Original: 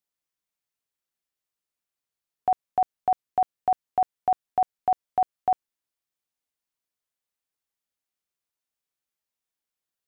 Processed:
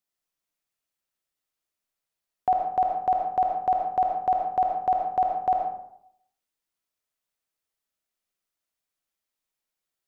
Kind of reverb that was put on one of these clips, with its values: digital reverb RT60 0.73 s, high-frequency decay 0.55×, pre-delay 35 ms, DRR 1 dB

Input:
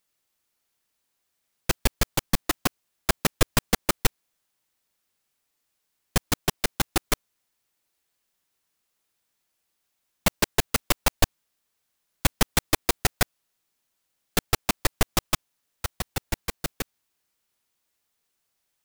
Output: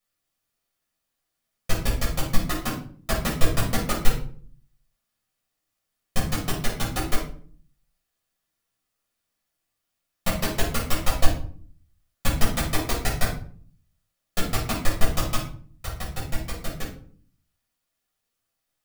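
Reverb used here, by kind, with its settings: shoebox room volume 460 m³, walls furnished, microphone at 6.2 m; gain -11 dB

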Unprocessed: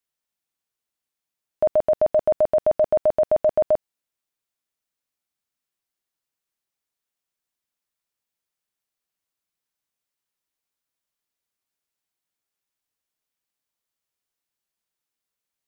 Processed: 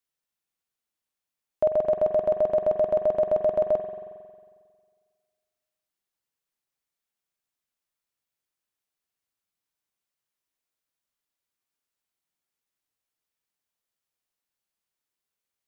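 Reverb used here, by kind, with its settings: spring tank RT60 1.8 s, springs 45 ms, chirp 50 ms, DRR 6 dB; gain -2.5 dB

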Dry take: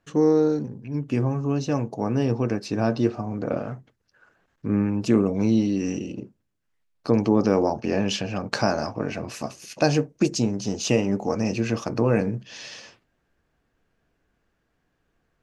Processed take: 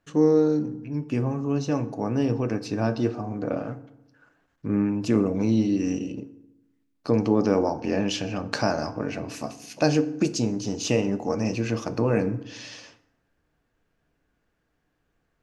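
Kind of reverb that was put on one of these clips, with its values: FDN reverb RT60 0.92 s, low-frequency decay 1.2×, high-frequency decay 0.6×, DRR 11.5 dB; gain -2 dB

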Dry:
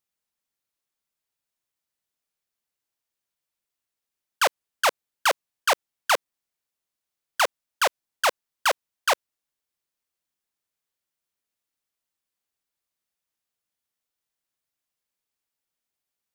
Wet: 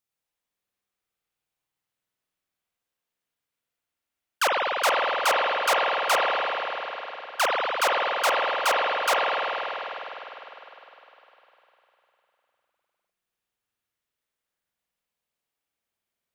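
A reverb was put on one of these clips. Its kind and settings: spring tank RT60 3.8 s, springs 50 ms, chirp 75 ms, DRR -4.5 dB; gain -2.5 dB

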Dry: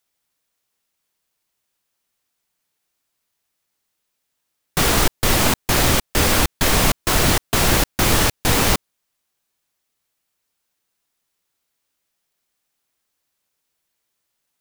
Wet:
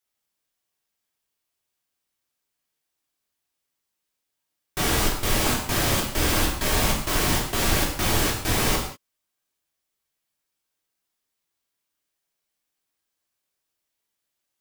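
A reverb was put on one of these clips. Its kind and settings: non-linear reverb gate 0.22 s falling, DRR -2.5 dB; gain -10 dB

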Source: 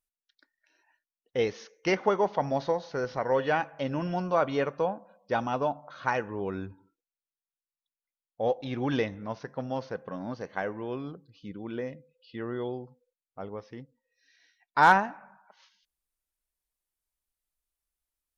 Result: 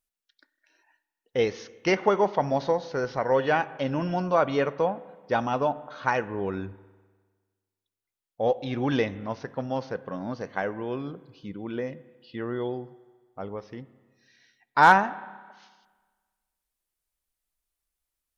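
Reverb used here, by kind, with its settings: spring tank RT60 1.5 s, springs 30/50 ms, chirp 75 ms, DRR 17.5 dB; gain +3 dB

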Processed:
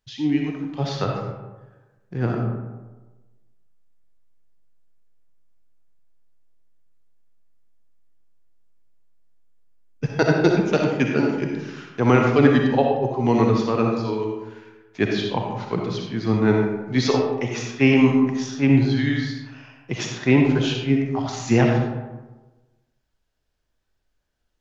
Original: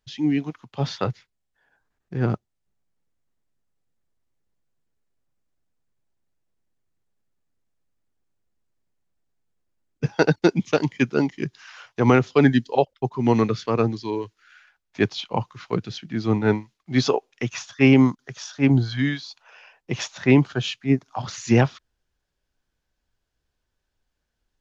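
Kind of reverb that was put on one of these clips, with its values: digital reverb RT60 1.2 s, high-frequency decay 0.45×, pre-delay 20 ms, DRR 0.5 dB; gain -1 dB

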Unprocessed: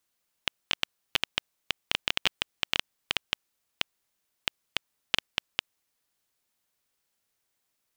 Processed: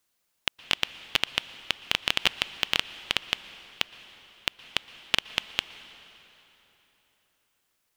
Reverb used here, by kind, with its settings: plate-style reverb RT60 3.8 s, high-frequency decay 0.8×, pre-delay 0.105 s, DRR 14.5 dB; gain +3 dB

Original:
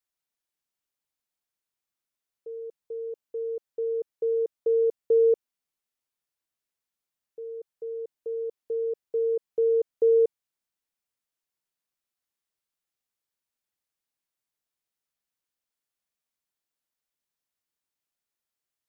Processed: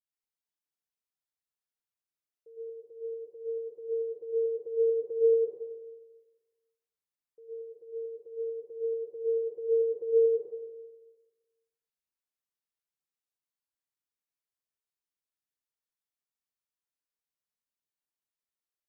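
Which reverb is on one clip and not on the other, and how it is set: plate-style reverb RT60 1.3 s, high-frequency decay 0.8×, pre-delay 95 ms, DRR -5.5 dB; gain -15 dB

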